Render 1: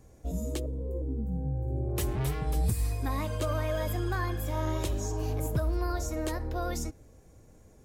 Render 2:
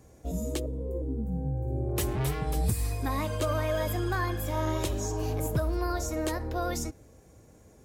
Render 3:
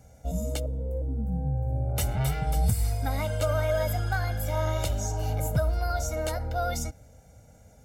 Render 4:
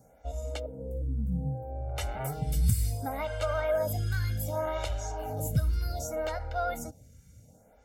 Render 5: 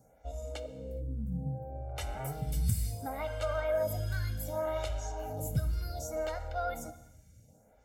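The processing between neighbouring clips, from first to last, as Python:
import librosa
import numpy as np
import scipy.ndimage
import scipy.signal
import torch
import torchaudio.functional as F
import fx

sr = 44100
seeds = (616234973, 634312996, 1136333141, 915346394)

y1 = scipy.signal.sosfilt(scipy.signal.butter(2, 46.0, 'highpass', fs=sr, output='sos'), x)
y1 = fx.low_shelf(y1, sr, hz=160.0, db=-3.0)
y1 = F.gain(torch.from_numpy(y1), 3.0).numpy()
y2 = y1 + 0.85 * np.pad(y1, (int(1.4 * sr / 1000.0), 0))[:len(y1)]
y2 = F.gain(torch.from_numpy(y2), -1.0).numpy()
y3 = fx.stagger_phaser(y2, sr, hz=0.66)
y4 = fx.rev_gated(y3, sr, seeds[0], gate_ms=450, shape='falling', drr_db=11.5)
y4 = F.gain(torch.from_numpy(y4), -4.0).numpy()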